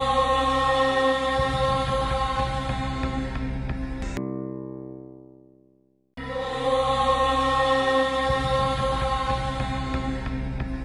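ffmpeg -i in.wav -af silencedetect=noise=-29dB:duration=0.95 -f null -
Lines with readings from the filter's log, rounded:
silence_start: 4.97
silence_end: 6.18 | silence_duration: 1.21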